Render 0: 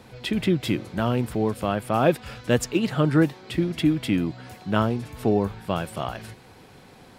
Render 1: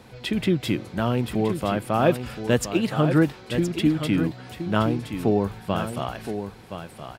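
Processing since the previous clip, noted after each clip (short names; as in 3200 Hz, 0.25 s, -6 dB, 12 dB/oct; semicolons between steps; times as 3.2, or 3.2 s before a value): echo 1.02 s -9 dB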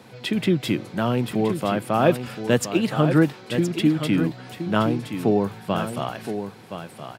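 HPF 110 Hz 24 dB/oct; gain +1.5 dB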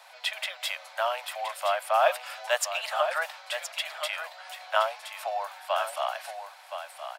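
steep high-pass 580 Hz 96 dB/oct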